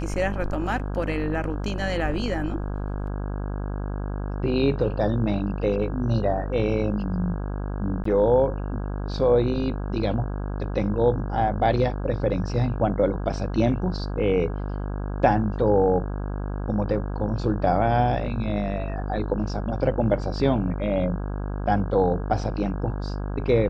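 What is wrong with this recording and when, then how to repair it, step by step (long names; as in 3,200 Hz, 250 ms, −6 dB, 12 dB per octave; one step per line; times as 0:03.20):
mains buzz 50 Hz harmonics 33 −29 dBFS
0:08.04–0:08.05: drop-out 14 ms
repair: hum removal 50 Hz, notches 33
repair the gap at 0:08.04, 14 ms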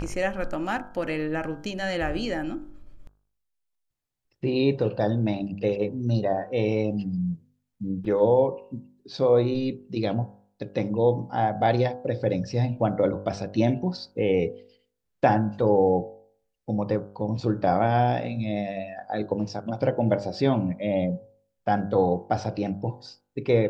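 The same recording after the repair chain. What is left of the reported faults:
none of them is left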